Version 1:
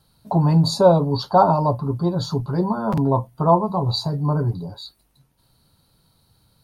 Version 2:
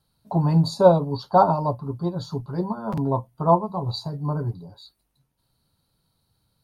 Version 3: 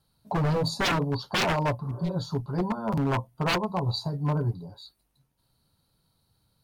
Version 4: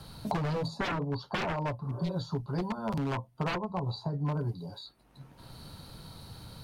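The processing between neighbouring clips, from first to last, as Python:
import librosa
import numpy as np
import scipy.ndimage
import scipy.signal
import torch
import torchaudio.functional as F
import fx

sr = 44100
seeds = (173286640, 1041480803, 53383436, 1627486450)

y1 = fx.upward_expand(x, sr, threshold_db=-28.0, expansion=1.5)
y2 = 10.0 ** (-19.5 / 20.0) * (np.abs((y1 / 10.0 ** (-19.5 / 20.0) + 3.0) % 4.0 - 2.0) - 1.0)
y2 = fx.spec_repair(y2, sr, seeds[0], start_s=1.86, length_s=0.24, low_hz=270.0, high_hz=1800.0, source='both')
y3 = fx.high_shelf(y2, sr, hz=8500.0, db=-11.0)
y3 = fx.band_squash(y3, sr, depth_pct=100)
y3 = y3 * 10.0 ** (-6.0 / 20.0)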